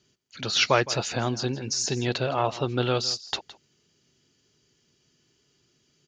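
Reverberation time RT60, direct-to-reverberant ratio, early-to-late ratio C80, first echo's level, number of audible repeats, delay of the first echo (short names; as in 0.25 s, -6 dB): none, none, none, -17.0 dB, 1, 0.164 s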